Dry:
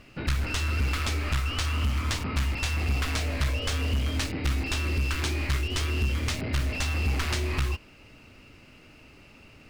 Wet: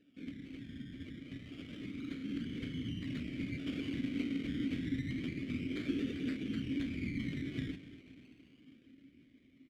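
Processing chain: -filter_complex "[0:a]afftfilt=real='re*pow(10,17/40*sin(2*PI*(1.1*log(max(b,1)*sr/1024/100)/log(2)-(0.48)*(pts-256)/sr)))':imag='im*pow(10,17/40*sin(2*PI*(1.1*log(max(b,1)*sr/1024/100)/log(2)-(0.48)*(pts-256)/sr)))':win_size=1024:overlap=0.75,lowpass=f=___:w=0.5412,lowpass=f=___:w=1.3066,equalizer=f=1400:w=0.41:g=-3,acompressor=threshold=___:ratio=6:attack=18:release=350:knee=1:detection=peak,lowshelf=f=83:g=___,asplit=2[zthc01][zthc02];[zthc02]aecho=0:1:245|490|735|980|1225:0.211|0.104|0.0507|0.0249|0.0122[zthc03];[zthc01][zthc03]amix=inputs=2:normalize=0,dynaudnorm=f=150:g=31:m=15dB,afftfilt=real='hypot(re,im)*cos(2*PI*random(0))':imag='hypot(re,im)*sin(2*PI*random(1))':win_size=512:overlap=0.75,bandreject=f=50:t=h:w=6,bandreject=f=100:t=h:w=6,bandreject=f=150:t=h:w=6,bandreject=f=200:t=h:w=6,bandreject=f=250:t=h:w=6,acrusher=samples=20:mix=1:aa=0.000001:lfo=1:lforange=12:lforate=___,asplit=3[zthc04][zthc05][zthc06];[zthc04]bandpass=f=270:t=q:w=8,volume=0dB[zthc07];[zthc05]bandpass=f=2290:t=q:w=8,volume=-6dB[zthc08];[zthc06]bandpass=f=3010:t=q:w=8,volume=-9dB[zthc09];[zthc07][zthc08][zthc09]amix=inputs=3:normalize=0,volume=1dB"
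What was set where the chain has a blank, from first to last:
9400, 9400, -25dB, 9, 0.28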